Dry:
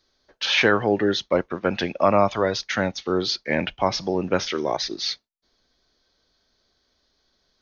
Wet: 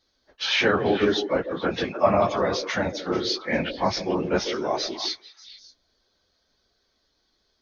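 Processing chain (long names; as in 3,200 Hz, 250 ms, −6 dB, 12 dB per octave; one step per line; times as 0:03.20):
random phases in long frames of 50 ms
on a send: echo through a band-pass that steps 147 ms, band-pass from 400 Hz, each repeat 1.4 octaves, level −6 dB
on the sum: level −2 dB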